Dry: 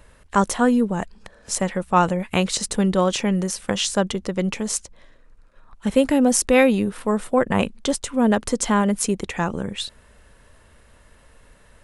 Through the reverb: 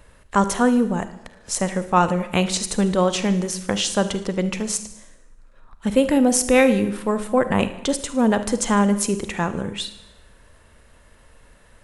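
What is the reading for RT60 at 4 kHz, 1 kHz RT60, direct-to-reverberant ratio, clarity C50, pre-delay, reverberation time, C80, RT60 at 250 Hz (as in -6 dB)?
0.85 s, 0.85 s, 11.0 dB, 12.5 dB, 38 ms, 0.85 s, 15.0 dB, 0.80 s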